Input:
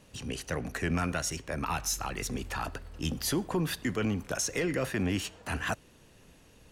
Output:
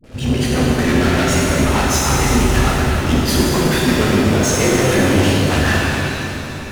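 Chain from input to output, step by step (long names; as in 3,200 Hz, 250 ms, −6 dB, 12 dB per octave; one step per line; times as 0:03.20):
high-shelf EQ 4,100 Hz −12 dB
notch filter 5,600 Hz, Q 19
hum removal 46.16 Hz, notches 6
leveller curve on the samples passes 5
rotating-speaker cabinet horn 6.7 Hz
all-pass dispersion highs, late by 40 ms, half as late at 470 Hz
on a send: feedback echo with a low-pass in the loop 261 ms, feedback 65%, level −9 dB
on the sum: reverb with rising layers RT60 2.5 s, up +7 semitones, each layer −8 dB, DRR −4.5 dB
level +4 dB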